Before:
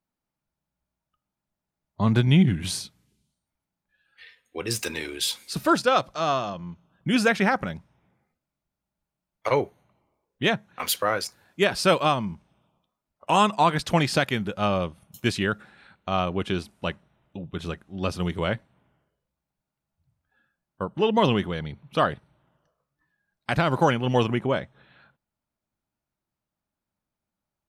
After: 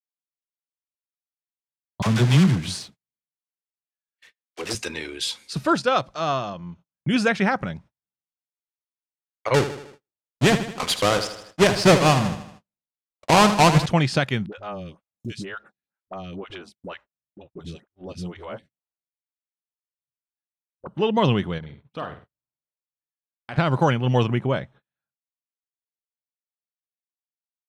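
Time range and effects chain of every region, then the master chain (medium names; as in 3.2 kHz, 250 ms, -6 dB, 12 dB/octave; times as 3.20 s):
2.02–4.75 s: block-companded coder 3-bit + bass shelf 85 Hz -8.5 dB + phase dispersion lows, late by 41 ms, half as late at 620 Hz
9.54–13.86 s: square wave that keeps the level + feedback delay 78 ms, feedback 52%, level -11 dB
14.46–20.87 s: compression 2.5:1, threshold -29 dBFS + phase dispersion highs, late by 59 ms, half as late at 470 Hz + lamp-driven phase shifter 2.1 Hz
21.58–23.58 s: treble shelf 4.1 kHz -6.5 dB + compression 1.5:1, threshold -45 dBFS + flutter echo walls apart 8.5 m, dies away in 0.37 s
whole clip: dynamic bell 130 Hz, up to +6 dB, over -39 dBFS, Q 1.9; low-pass 7.9 kHz 12 dB/octave; gate -46 dBFS, range -37 dB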